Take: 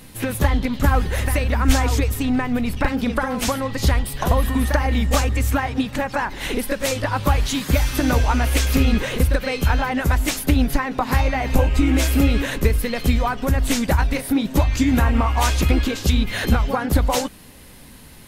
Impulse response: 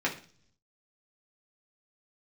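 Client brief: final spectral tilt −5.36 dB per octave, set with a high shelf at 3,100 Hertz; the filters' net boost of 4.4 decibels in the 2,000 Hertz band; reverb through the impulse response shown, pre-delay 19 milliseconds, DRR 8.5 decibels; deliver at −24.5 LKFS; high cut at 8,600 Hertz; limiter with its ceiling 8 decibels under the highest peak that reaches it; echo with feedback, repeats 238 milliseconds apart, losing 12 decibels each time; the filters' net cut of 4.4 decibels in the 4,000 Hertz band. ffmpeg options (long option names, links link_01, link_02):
-filter_complex "[0:a]lowpass=8600,equalizer=frequency=2000:width_type=o:gain=9,highshelf=frequency=3100:gain=-8.5,equalizer=frequency=4000:width_type=o:gain=-3,alimiter=limit=-10dB:level=0:latency=1,aecho=1:1:238|476|714:0.251|0.0628|0.0157,asplit=2[link_01][link_02];[1:a]atrim=start_sample=2205,adelay=19[link_03];[link_02][link_03]afir=irnorm=-1:irlink=0,volume=-18dB[link_04];[link_01][link_04]amix=inputs=2:normalize=0,volume=-4dB"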